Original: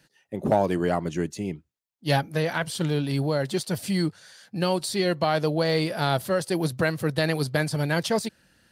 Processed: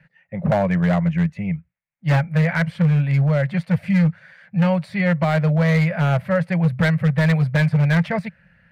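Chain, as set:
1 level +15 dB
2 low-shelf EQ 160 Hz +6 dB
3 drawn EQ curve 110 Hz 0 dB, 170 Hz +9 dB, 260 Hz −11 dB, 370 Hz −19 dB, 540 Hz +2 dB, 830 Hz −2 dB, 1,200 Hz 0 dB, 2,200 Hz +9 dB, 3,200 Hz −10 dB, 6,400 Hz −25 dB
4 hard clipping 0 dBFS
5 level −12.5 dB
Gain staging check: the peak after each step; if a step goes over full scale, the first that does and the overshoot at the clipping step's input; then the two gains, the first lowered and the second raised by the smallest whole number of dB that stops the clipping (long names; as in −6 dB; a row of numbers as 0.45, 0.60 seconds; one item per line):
+6.5, +7.5, +9.5, 0.0, −12.5 dBFS
step 1, 9.5 dB
step 1 +5 dB, step 5 −2.5 dB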